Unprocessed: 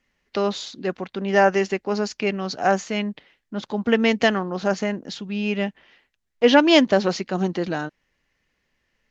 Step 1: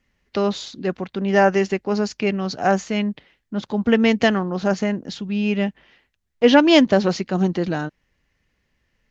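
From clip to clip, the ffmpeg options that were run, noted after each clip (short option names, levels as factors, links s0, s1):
-af "equalizer=f=61:w=0.34:g=9"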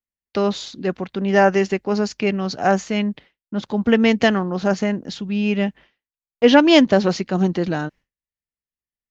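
-af "agate=range=0.0224:threshold=0.0112:ratio=3:detection=peak,volume=1.12"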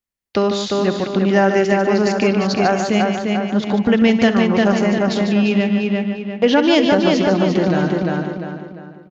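-filter_complex "[0:a]asplit=2[s0][s1];[s1]adelay=348,lowpass=f=4100:p=1,volume=0.596,asplit=2[s2][s3];[s3]adelay=348,lowpass=f=4100:p=1,volume=0.4,asplit=2[s4][s5];[s5]adelay=348,lowpass=f=4100:p=1,volume=0.4,asplit=2[s6][s7];[s7]adelay=348,lowpass=f=4100:p=1,volume=0.4,asplit=2[s8][s9];[s9]adelay=348,lowpass=f=4100:p=1,volume=0.4[s10];[s2][s4][s6][s8][s10]amix=inputs=5:normalize=0[s11];[s0][s11]amix=inputs=2:normalize=0,acompressor=threshold=0.112:ratio=3,asplit=2[s12][s13];[s13]aecho=0:1:67|147:0.188|0.422[s14];[s12][s14]amix=inputs=2:normalize=0,volume=1.88"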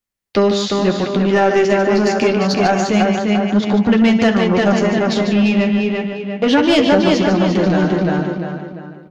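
-af "acontrast=84,flanger=delay=9.2:depth=4.2:regen=-37:speed=0.27:shape=triangular"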